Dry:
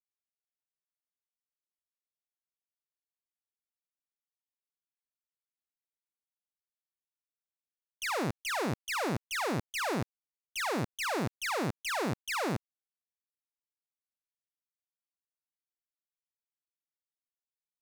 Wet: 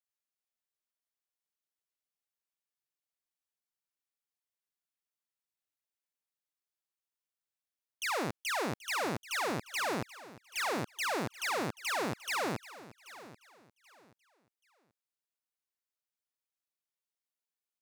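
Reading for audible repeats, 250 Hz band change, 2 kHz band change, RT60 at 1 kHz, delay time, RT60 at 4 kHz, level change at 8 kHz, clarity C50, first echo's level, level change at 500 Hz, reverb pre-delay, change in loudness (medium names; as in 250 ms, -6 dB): 2, -3.5 dB, 0.0 dB, no reverb, 782 ms, no reverb, 0.0 dB, no reverb, -17.0 dB, -1.5 dB, no reverb, -1.0 dB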